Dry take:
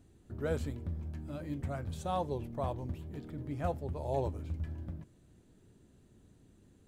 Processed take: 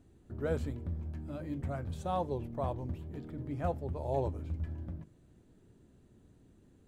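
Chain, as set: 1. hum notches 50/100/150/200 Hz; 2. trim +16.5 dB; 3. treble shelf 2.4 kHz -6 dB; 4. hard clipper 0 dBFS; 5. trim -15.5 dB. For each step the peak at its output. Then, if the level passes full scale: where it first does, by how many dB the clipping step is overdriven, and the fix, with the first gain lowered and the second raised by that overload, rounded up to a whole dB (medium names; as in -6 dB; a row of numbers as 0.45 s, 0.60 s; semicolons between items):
-20.0 dBFS, -3.5 dBFS, -4.0 dBFS, -4.0 dBFS, -19.5 dBFS; nothing clips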